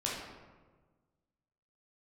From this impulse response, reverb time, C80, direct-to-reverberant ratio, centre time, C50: 1.4 s, 3.5 dB, -5.5 dB, 73 ms, 0.5 dB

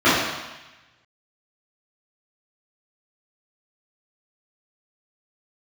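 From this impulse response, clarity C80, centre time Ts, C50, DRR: 2.5 dB, 81 ms, -0.5 dB, -14.5 dB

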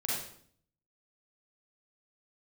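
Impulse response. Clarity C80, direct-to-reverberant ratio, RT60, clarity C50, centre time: 4.0 dB, -6.0 dB, 0.60 s, -1.5 dB, 65 ms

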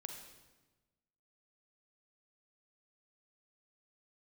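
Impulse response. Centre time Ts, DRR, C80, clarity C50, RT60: 36 ms, 3.5 dB, 7.0 dB, 4.5 dB, 1.2 s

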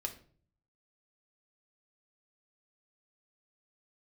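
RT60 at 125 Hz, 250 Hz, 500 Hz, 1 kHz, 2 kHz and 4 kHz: 0.90 s, 0.70 s, 0.55 s, 0.40 s, 0.35 s, 0.35 s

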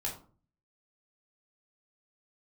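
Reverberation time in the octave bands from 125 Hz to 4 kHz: 0.70 s, 0.60 s, 0.45 s, 0.40 s, 0.30 s, 0.25 s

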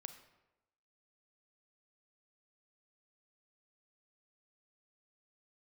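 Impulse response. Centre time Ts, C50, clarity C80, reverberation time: 13 ms, 10.0 dB, 12.0 dB, 1.0 s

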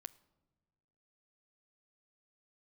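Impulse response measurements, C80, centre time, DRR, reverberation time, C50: 22.5 dB, 2 ms, 16.0 dB, no single decay rate, 20.5 dB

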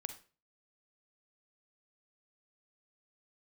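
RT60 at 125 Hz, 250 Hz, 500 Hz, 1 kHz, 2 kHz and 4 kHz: 0.50 s, 0.40 s, 0.40 s, 0.35 s, 0.35 s, 0.30 s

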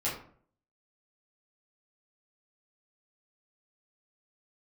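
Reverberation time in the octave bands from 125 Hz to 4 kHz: 0.65 s, 0.60 s, 0.55 s, 0.50 s, 0.40 s, 0.30 s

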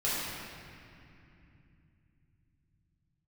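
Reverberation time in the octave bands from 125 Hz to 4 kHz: 6.3 s, 4.7 s, 2.8 s, 2.6 s, 2.8 s, 2.0 s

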